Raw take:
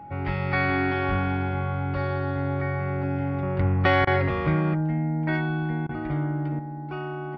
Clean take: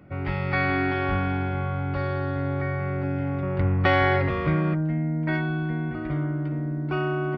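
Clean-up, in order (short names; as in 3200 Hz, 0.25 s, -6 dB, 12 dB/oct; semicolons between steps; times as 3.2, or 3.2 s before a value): notch 830 Hz, Q 30; interpolate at 4.05/5.87, 20 ms; gain 0 dB, from 6.59 s +7 dB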